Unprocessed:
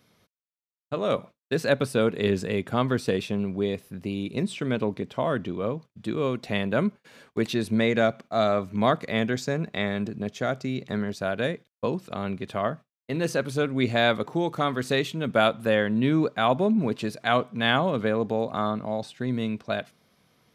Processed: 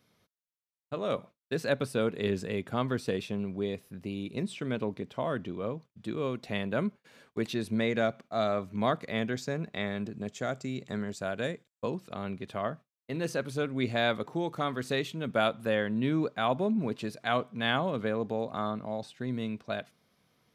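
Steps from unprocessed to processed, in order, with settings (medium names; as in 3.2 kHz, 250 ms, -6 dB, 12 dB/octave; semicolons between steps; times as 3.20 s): 10.15–11.90 s: peaking EQ 7.5 kHz +12.5 dB 0.28 oct; trim -6 dB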